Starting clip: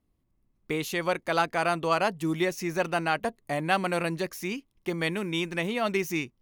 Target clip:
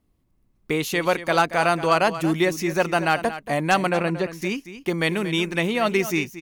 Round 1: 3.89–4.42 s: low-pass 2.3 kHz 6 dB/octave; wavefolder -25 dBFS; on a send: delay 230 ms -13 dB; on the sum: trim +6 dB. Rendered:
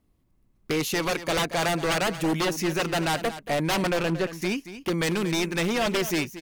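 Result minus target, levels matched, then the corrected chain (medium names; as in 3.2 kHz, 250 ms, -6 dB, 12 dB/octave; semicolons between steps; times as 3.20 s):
wavefolder: distortion +26 dB
3.89–4.42 s: low-pass 2.3 kHz 6 dB/octave; wavefolder -13.5 dBFS; on a send: delay 230 ms -13 dB; on the sum: trim +6 dB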